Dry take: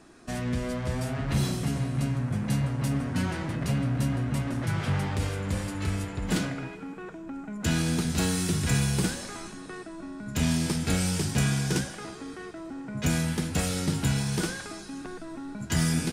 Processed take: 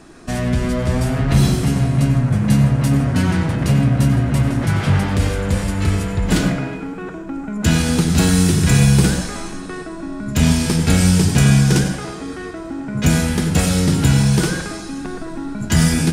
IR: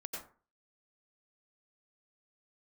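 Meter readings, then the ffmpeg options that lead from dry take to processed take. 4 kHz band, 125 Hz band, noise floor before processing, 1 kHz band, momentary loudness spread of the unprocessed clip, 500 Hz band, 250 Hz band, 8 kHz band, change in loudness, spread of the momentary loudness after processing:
+9.5 dB, +12.5 dB, −42 dBFS, +10.0 dB, 13 LU, +11.0 dB, +12.0 dB, +9.5 dB, +12.0 dB, 15 LU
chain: -filter_complex "[0:a]asplit=2[link_01][link_02];[1:a]atrim=start_sample=2205,lowshelf=frequency=190:gain=10.5[link_03];[link_02][link_03]afir=irnorm=-1:irlink=0,volume=-2dB[link_04];[link_01][link_04]amix=inputs=2:normalize=0,volume=6dB"

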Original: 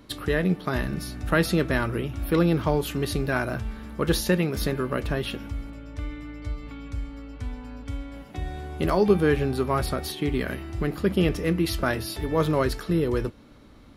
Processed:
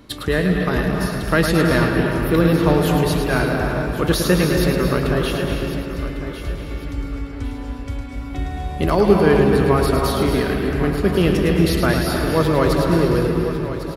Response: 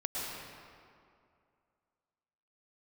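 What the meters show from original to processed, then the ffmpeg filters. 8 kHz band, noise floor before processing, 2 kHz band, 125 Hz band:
+6.5 dB, −49 dBFS, +7.0 dB, +8.0 dB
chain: -filter_complex "[0:a]aecho=1:1:1101|2202|3303:0.237|0.0759|0.0243,asplit=2[link_01][link_02];[1:a]atrim=start_sample=2205,adelay=107[link_03];[link_02][link_03]afir=irnorm=-1:irlink=0,volume=-5dB[link_04];[link_01][link_04]amix=inputs=2:normalize=0,volume=4.5dB"

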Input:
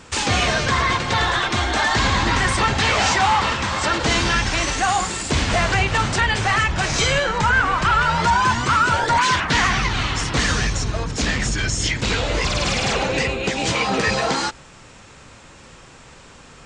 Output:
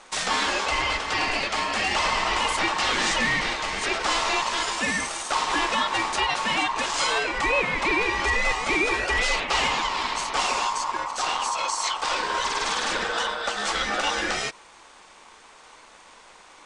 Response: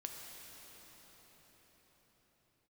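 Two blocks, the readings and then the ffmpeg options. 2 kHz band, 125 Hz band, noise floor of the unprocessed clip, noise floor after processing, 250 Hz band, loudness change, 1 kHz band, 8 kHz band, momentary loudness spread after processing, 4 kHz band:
−4.5 dB, −19.0 dB, −45 dBFS, −50 dBFS, −9.0 dB, −5.0 dB, −5.0 dB, −5.0 dB, 4 LU, −3.5 dB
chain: -af "aeval=exprs='val(0)*sin(2*PI*1000*n/s)':channel_layout=same,equalizer=frequency=110:width=0.91:gain=-14,volume=-2dB"

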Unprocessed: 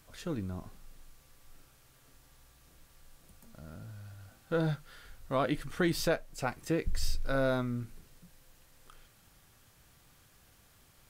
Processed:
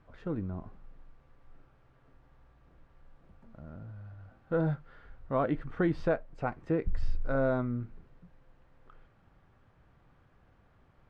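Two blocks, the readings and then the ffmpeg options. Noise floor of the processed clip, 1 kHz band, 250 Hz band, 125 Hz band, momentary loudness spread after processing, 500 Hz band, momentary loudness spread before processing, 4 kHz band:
−64 dBFS, +0.5 dB, +1.5 dB, +1.5 dB, 18 LU, +1.5 dB, 18 LU, below −15 dB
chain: -af "lowpass=1400,volume=1.5dB"

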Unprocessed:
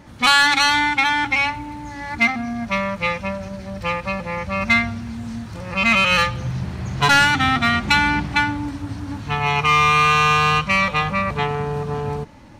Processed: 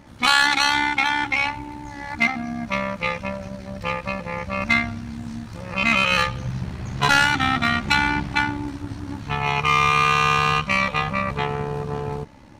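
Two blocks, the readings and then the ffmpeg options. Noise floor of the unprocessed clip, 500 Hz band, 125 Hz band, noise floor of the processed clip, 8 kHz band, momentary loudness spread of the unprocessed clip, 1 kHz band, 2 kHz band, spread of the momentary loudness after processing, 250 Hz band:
−36 dBFS, −2.5 dB, −3.0 dB, −40 dBFS, −3.0 dB, 16 LU, −3.0 dB, −3.0 dB, 16 LU, −3.0 dB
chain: -af "tremolo=f=68:d=0.621"

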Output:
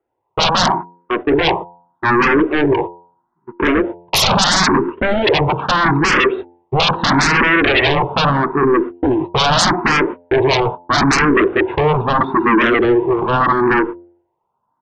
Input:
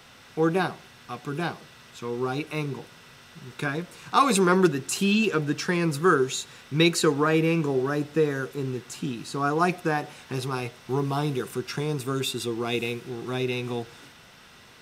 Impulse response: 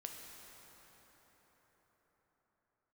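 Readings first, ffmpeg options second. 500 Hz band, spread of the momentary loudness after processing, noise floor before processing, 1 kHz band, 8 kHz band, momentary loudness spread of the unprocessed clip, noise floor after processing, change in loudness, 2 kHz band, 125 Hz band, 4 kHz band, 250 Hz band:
+10.0 dB, 6 LU, −51 dBFS, +13.5 dB, +9.0 dB, 13 LU, −70 dBFS, +11.5 dB, +15.0 dB, +7.5 dB, +14.5 dB, +9.5 dB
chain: -filter_complex "[0:a]aresample=8000,volume=18dB,asoftclip=hard,volume=-18dB,aresample=44100,lowpass=frequency=950:width_type=q:width=11,equalizer=frequency=350:width_type=o:width=0.69:gain=14,agate=range=-41dB:threshold=-30dB:ratio=16:detection=peak,aeval=exprs='1*sin(PI/2*10*val(0)/1)':channel_layout=same,bandreject=frequency=86.8:width_type=h:width=4,bandreject=frequency=173.6:width_type=h:width=4,bandreject=frequency=260.4:width_type=h:width=4,bandreject=frequency=347.2:width_type=h:width=4,bandreject=frequency=434:width_type=h:width=4,bandreject=frequency=520.8:width_type=h:width=4,bandreject=frequency=607.6:width_type=h:width=4,bandreject=frequency=694.4:width_type=h:width=4,bandreject=frequency=781.2:width_type=h:width=4,bandreject=frequency=868:width_type=h:width=4,bandreject=frequency=954.8:width_type=h:width=4,asplit=2[link_01][link_02];[link_02]afreqshift=0.78[link_03];[link_01][link_03]amix=inputs=2:normalize=1,volume=-7dB"

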